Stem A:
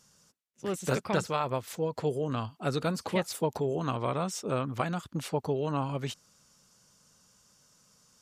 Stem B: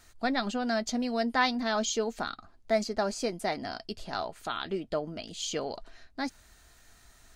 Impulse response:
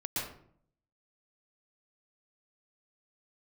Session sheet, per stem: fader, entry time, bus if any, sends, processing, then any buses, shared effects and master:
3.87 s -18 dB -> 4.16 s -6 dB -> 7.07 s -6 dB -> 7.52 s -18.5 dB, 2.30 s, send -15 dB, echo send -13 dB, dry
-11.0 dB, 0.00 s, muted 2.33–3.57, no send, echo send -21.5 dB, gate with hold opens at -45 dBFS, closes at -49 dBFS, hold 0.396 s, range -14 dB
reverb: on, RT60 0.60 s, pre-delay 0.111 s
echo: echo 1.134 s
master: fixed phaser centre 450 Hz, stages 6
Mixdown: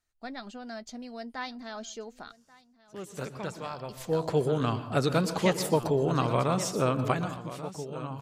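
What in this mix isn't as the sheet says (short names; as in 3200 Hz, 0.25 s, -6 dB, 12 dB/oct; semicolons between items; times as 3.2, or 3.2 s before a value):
stem A -18.0 dB -> -9.0 dB; master: missing fixed phaser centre 450 Hz, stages 6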